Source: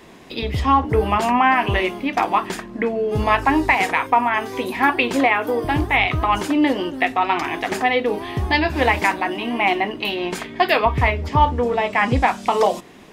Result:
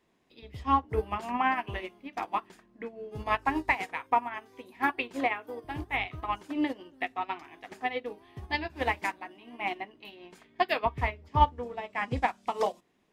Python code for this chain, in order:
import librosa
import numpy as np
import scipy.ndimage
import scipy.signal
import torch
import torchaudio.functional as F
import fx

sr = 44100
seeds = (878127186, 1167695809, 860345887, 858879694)

y = fx.upward_expand(x, sr, threshold_db=-25.0, expansion=2.5)
y = y * librosa.db_to_amplitude(-5.0)